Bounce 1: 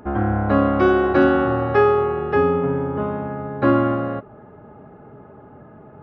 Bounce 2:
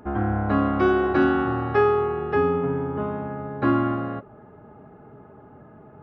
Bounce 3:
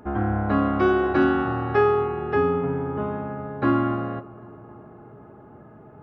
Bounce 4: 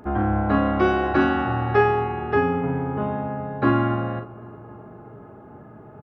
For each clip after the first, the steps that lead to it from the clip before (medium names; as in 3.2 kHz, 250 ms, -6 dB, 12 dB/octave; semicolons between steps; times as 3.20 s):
band-stop 550 Hz, Q 12; trim -3.5 dB
filtered feedback delay 266 ms, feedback 76%, low-pass 2.3 kHz, level -21.5 dB
doubling 42 ms -7 dB; trim +2 dB